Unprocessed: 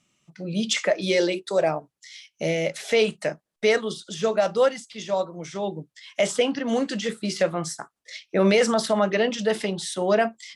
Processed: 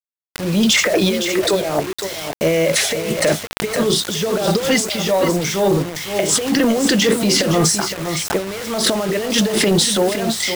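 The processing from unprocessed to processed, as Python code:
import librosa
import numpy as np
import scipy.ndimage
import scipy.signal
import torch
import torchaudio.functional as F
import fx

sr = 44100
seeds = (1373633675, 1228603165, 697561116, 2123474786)

p1 = fx.dynamic_eq(x, sr, hz=390.0, q=1.5, threshold_db=-34.0, ratio=4.0, max_db=5)
p2 = fx.transient(p1, sr, attack_db=-4, sustain_db=10)
p3 = fx.over_compress(p2, sr, threshold_db=-23.0, ratio=-0.5)
p4 = p3 + fx.echo_single(p3, sr, ms=514, db=-10.0, dry=0)
p5 = fx.dmg_buzz(p4, sr, base_hz=100.0, harmonics=22, level_db=-52.0, tilt_db=-3, odd_only=False)
p6 = fx.quant_dither(p5, sr, seeds[0], bits=6, dither='none')
p7 = 10.0 ** (-15.5 / 20.0) * np.tanh(p6 / 10.0 ** (-15.5 / 20.0))
p8 = fx.pre_swell(p7, sr, db_per_s=110.0)
y = F.gain(torch.from_numpy(p8), 8.0).numpy()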